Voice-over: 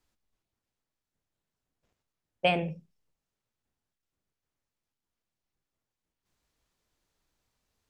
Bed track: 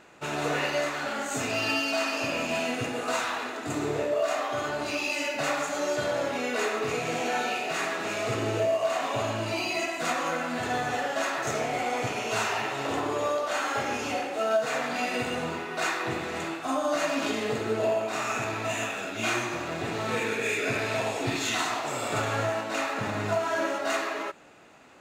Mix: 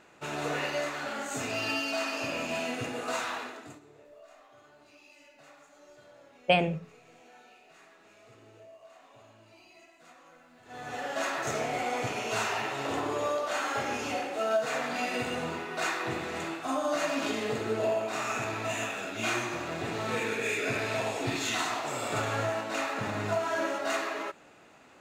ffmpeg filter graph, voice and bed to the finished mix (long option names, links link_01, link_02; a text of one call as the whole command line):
ffmpeg -i stem1.wav -i stem2.wav -filter_complex "[0:a]adelay=4050,volume=2dB[link_01];[1:a]volume=20.5dB,afade=type=out:start_time=3.36:duration=0.44:silence=0.0707946,afade=type=in:start_time=10.65:duration=0.59:silence=0.0595662[link_02];[link_01][link_02]amix=inputs=2:normalize=0" out.wav